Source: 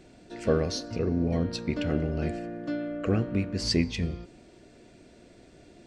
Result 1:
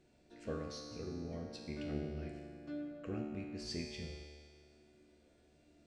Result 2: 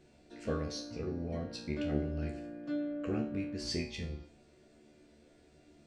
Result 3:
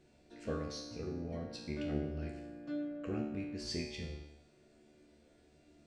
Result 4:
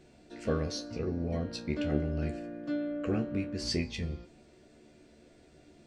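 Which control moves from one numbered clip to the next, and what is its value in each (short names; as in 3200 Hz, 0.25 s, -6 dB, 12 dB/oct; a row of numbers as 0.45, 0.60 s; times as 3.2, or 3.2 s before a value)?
resonator, decay: 1.9, 0.4, 0.86, 0.16 s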